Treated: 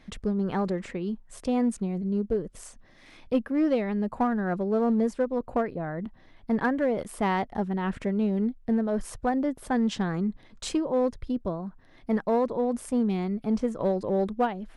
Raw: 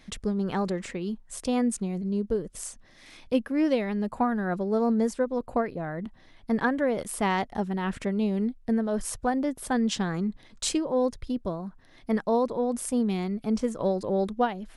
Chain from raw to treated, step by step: high shelf 3600 Hz -11 dB; in parallel at -5 dB: hard clip -22 dBFS, distortion -15 dB; on the sum: gain -3 dB

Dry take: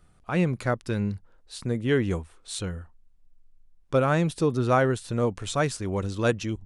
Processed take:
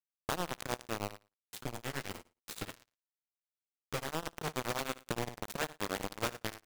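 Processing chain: per-bin compression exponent 0.6; LPF 8700 Hz 12 dB/oct; de-hum 72.69 Hz, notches 12; compressor 5:1, threshold -34 dBFS, peak gain reduction 17 dB; bit-crush 5-bit; 1.15–4.15 flange 1.9 Hz, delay 6.7 ms, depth 9.8 ms, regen +32%; flutter echo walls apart 9.8 m, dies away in 0.27 s; beating tremolo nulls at 9.6 Hz; gain +1 dB

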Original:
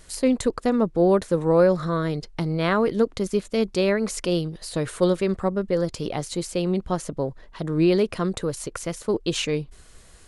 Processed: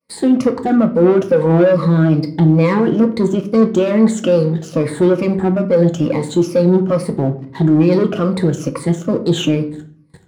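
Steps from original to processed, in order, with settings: moving spectral ripple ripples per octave 0.92, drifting -2.3 Hz, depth 19 dB; high shelf 8600 Hz -3.5 dB; expander -39 dBFS; sample leveller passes 3; HPF 130 Hz 24 dB/oct; in parallel at +1.5 dB: limiter -10.5 dBFS, peak gain reduction 11.5 dB; on the sum: tilt -3 dB/oct; on a send at -5 dB: reverb RT60 0.45 s, pre-delay 3 ms; on the sum: gain -11 dB

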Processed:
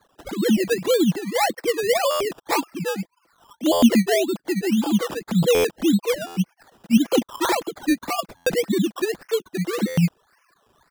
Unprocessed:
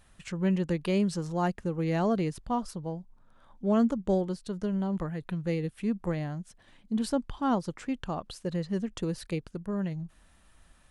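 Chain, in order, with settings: sine-wave speech; comb 6 ms, depth 51%; in parallel at 0 dB: limiter -23.5 dBFS, peak gain reduction 12 dB; on the sum: treble ducked by the level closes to 2400 Hz, closed at -23 dBFS; decimation with a swept rate 16×, swing 60% 1.8 Hz; stuck buffer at 2.1/3.72/5.54/6.26/8.36/9.87, samples 512, times 8; gain +4.5 dB

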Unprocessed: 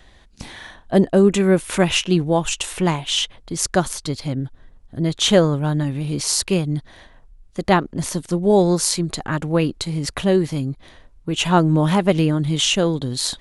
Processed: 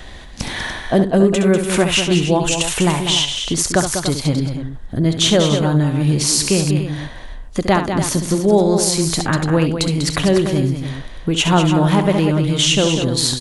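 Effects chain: compressor 2:1, threshold -36 dBFS, peak gain reduction 15 dB; on a send: loudspeakers at several distances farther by 23 m -9 dB, 67 m -8 dB, 100 m -11 dB; on the sum: maximiser +14.5 dB; gain -1 dB

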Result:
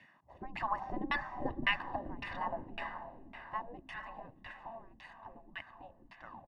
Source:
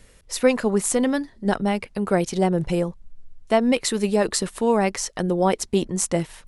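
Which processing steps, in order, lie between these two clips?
tape stop at the end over 0.43 s; Doppler pass-by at 1.41, 9 m/s, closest 5.2 m; spectral gate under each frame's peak -15 dB weak; comb 1.1 ms, depth 79%; diffused feedback echo 0.481 s, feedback 53%, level -9.5 dB; LFO low-pass saw down 1.8 Hz 240–2500 Hz

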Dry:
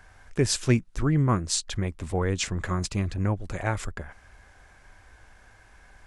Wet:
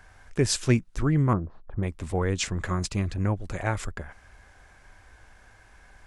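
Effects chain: 1.33–1.83 LPF 1100 Hz 24 dB/oct

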